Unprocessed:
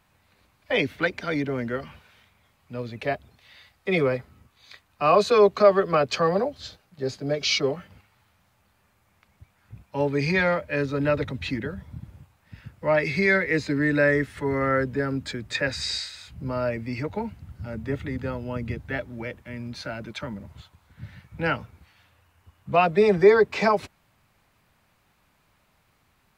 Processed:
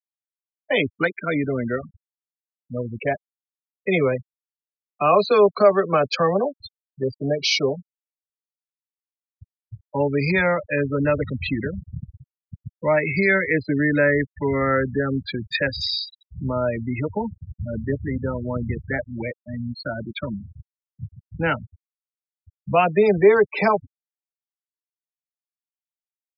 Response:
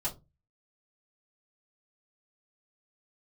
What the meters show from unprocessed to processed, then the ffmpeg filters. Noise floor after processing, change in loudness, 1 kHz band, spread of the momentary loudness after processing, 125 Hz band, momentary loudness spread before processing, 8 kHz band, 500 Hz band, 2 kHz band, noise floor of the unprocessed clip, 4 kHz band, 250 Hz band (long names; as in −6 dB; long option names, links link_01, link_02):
below −85 dBFS, +2.5 dB, +2.0 dB, 15 LU, +3.5 dB, 17 LU, −1.5 dB, +2.0 dB, +2.5 dB, −66 dBFS, +2.5 dB, +3.0 dB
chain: -filter_complex "[0:a]afftfilt=real='re*gte(hypot(re,im),0.0501)':imag='im*gte(hypot(re,im),0.0501)':win_size=1024:overlap=0.75,asplit=2[link_01][link_02];[link_02]acompressor=threshold=-29dB:ratio=6,volume=0.5dB[link_03];[link_01][link_03]amix=inputs=2:normalize=0"